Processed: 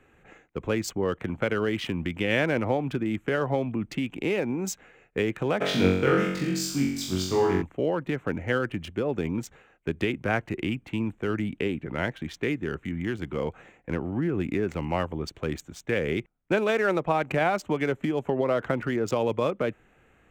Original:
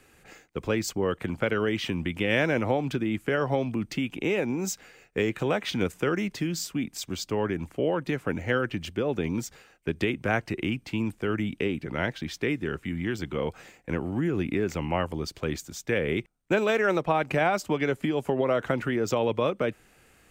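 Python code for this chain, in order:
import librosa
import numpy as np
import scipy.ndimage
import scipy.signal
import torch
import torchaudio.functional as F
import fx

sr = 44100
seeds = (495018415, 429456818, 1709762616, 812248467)

y = fx.wiener(x, sr, points=9)
y = fx.room_flutter(y, sr, wall_m=3.7, rt60_s=0.77, at=(5.6, 7.61), fade=0.02)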